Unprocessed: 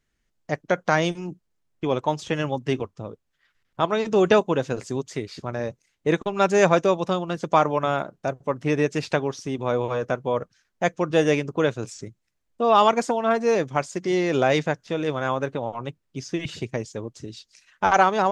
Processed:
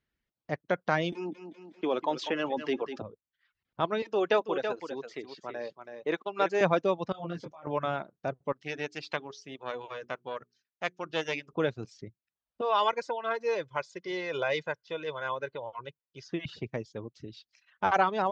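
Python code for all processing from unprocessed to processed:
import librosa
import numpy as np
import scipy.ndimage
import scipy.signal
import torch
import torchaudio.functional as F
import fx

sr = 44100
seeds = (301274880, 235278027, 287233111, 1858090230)

y = fx.chain(x, sr, fx.highpass(hz=240.0, slope=24),
    fx.echo_feedback(ms=196, feedback_pct=31, wet_db=-16.0),
    fx.env_flatten(amount_pct=50), at=(1.12, 3.02))
y = fx.chain(y, sr, fx.highpass(hz=360.0, slope=12),
    fx.echo_single(ms=328, db=-7.0), at=(4.02, 6.61))
y = fx.chain(y, sr, fx.peak_eq(hz=580.0, db=3.0, octaves=0.25),
    fx.over_compress(threshold_db=-30.0, ratio=-1.0),
    fx.detune_double(cents=25), at=(7.12, 7.67))
y = fx.chain(y, sr, fx.hum_notches(base_hz=60, count=7),
    fx.tube_stage(drive_db=10.0, bias=0.75),
    fx.tilt_eq(slope=3.0), at=(8.52, 11.53))
y = fx.chain(y, sr, fx.low_shelf(hz=440.0, db=-11.0),
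    fx.comb(ms=2.0, depth=0.57), at=(12.61, 16.27))
y = scipy.signal.sosfilt(scipy.signal.butter(2, 45.0, 'highpass', fs=sr, output='sos'), y)
y = fx.dereverb_blind(y, sr, rt60_s=0.54)
y = scipy.signal.sosfilt(scipy.signal.butter(4, 4800.0, 'lowpass', fs=sr, output='sos'), y)
y = F.gain(torch.from_numpy(y), -6.5).numpy()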